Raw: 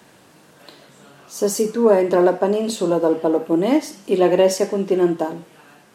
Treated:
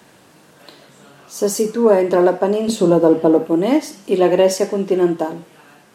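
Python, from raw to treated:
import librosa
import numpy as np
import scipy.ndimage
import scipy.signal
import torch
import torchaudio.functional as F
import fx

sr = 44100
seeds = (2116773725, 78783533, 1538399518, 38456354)

y = fx.low_shelf(x, sr, hz=380.0, db=8.5, at=(2.68, 3.47))
y = y * 10.0 ** (1.5 / 20.0)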